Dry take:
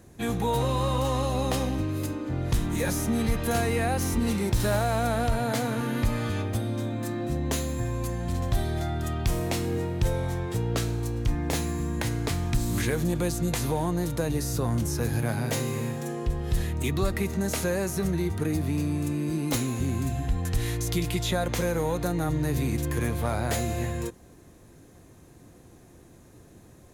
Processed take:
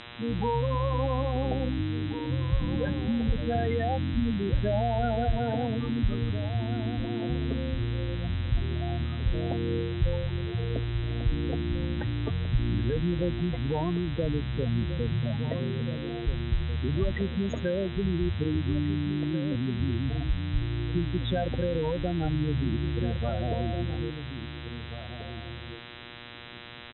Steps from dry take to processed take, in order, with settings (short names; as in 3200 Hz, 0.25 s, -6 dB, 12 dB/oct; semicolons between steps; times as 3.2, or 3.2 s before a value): spectral gate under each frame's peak -10 dB strong; buzz 120 Hz, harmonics 33, -45 dBFS 0 dB/oct; outdoor echo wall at 290 m, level -10 dB; MP3 48 kbps 44100 Hz